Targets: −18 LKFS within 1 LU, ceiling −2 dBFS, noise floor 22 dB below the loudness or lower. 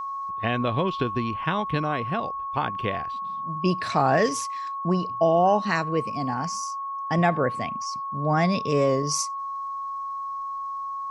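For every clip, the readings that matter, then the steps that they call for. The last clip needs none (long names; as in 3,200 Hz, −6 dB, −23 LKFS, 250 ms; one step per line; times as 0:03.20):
crackle rate 41 per second; interfering tone 1,100 Hz; level of the tone −29 dBFS; integrated loudness −25.5 LKFS; sample peak −8.0 dBFS; target loudness −18.0 LKFS
→ click removal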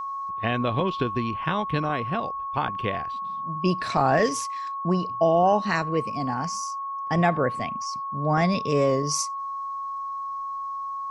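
crackle rate 0.18 per second; interfering tone 1,100 Hz; level of the tone −29 dBFS
→ notch filter 1,100 Hz, Q 30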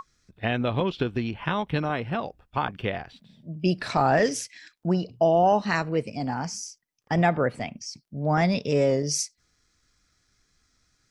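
interfering tone none found; integrated loudness −26.0 LKFS; sample peak −9.0 dBFS; target loudness −18.0 LKFS
→ level +8 dB
brickwall limiter −2 dBFS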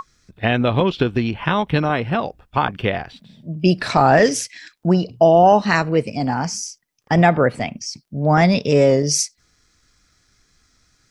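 integrated loudness −18.0 LKFS; sample peak −2.0 dBFS; background noise floor −63 dBFS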